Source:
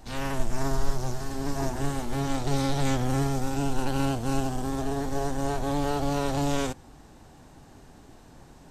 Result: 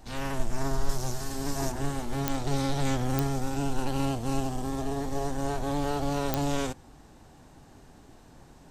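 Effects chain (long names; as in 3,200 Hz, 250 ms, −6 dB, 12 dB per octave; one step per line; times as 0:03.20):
0:00.89–0:01.72: high-shelf EQ 3,900 Hz +8.5 dB
0:03.84–0:05.31: notch filter 1,500 Hz, Q 10
digital clicks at 0:02.28/0:03.19/0:06.34, −7 dBFS
level −2 dB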